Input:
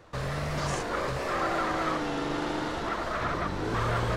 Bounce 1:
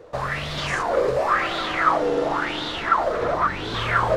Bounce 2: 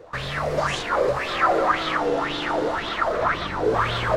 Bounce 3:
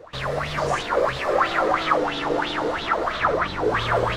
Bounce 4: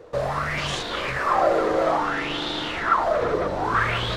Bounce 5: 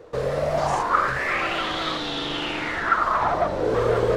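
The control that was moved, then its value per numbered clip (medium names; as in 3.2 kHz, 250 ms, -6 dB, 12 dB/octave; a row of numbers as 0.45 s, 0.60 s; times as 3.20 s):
sweeping bell, rate: 0.94 Hz, 1.9 Hz, 3 Hz, 0.6 Hz, 0.25 Hz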